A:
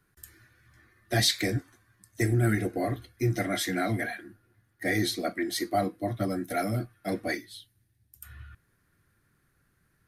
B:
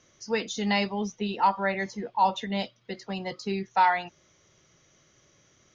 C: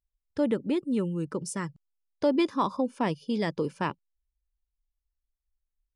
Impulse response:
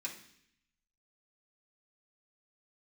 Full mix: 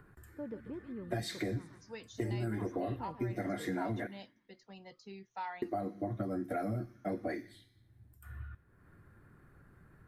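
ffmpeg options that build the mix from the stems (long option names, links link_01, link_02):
-filter_complex "[0:a]highshelf=frequency=10000:gain=5.5,acompressor=mode=upward:threshold=-49dB:ratio=2.5,volume=1.5dB,asplit=3[link_01][link_02][link_03];[link_01]atrim=end=4.07,asetpts=PTS-STARTPTS,afade=type=out:start_time=4.066:duration=0.004:curve=hsin[link_04];[link_02]atrim=start=4.07:end=5.62,asetpts=PTS-STARTPTS,volume=0[link_05];[link_03]atrim=start=5.62,asetpts=PTS-STARTPTS,afade=type=in:duration=0.004:curve=hsin[link_06];[link_04][link_05][link_06]concat=n=3:v=0:a=1,asplit=2[link_07][link_08];[link_08]volume=-18dB[link_09];[1:a]adelay=1600,volume=-19dB[link_10];[2:a]volume=-16.5dB,asplit=2[link_11][link_12];[link_12]volume=-14dB[link_13];[link_07][link_11]amix=inputs=2:normalize=0,lowpass=1400,acompressor=threshold=-28dB:ratio=6,volume=0dB[link_14];[3:a]atrim=start_sample=2205[link_15];[link_09][link_15]afir=irnorm=-1:irlink=0[link_16];[link_13]aecho=0:1:140|280|420|560|700:1|0.34|0.116|0.0393|0.0134[link_17];[link_10][link_14][link_16][link_17]amix=inputs=4:normalize=0,acompressor=threshold=-35dB:ratio=2"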